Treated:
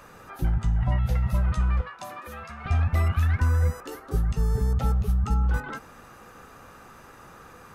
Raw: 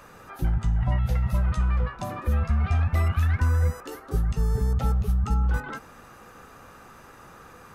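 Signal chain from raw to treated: 1.81–2.66 s: high-pass 1 kHz 6 dB/octave

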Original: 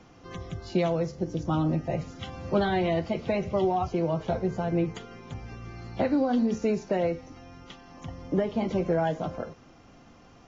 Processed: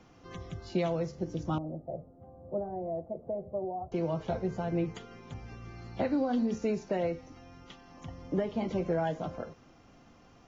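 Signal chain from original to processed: 1.58–3.92 s: four-pole ladder low-pass 730 Hz, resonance 55%; trim -4.5 dB

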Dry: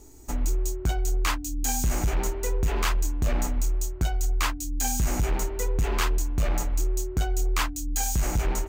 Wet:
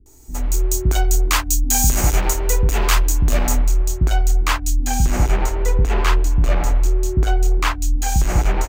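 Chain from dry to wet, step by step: peak limiter -22 dBFS, peak gain reduction 4.5 dB; treble shelf 5 kHz +5 dB, from 3.53 s -5 dB, from 4.79 s -10 dB; bands offset in time lows, highs 60 ms, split 290 Hz; level rider gain up to 12.5 dB

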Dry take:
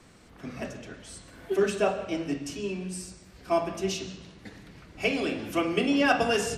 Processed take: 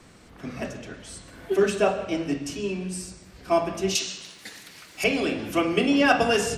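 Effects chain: 3.95–5.04 s: tilt EQ +4.5 dB/octave; trim +3.5 dB

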